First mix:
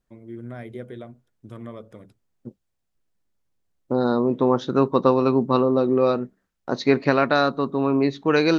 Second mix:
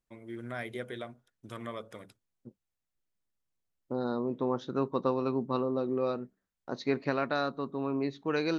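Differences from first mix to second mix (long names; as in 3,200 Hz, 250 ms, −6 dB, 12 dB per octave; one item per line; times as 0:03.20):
first voice: add tilt shelving filter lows −7.5 dB, about 650 Hz
second voice −11.5 dB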